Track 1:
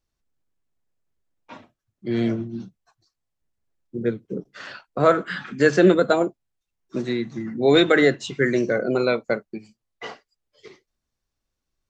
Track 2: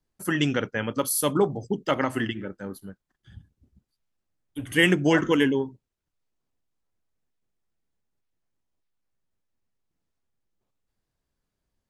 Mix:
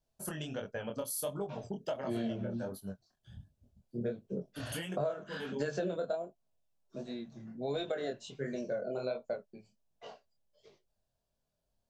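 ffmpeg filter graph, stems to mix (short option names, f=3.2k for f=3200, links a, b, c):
-filter_complex "[0:a]volume=-3.5dB,afade=t=out:st=5.98:d=0.24:silence=0.398107[a];[1:a]acompressor=threshold=-30dB:ratio=16,volume=0dB[b];[a][b]amix=inputs=2:normalize=0,equalizer=f=315:t=o:w=0.33:g=-10,equalizer=f=630:t=o:w=0.33:g=11,equalizer=f=1.25k:t=o:w=0.33:g=-6,equalizer=f=2k:t=o:w=0.33:g=-12,flanger=delay=20:depth=6:speed=1.4,acompressor=threshold=-31dB:ratio=12"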